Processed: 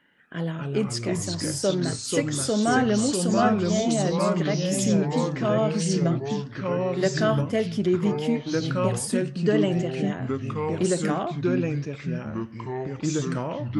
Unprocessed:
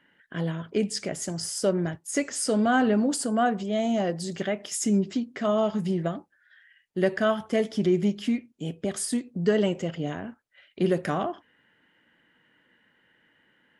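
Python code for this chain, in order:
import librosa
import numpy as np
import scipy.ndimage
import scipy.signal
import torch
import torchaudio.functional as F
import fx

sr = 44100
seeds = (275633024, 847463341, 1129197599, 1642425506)

y = fx.echo_pitch(x, sr, ms=178, semitones=-3, count=3, db_per_echo=-3.0)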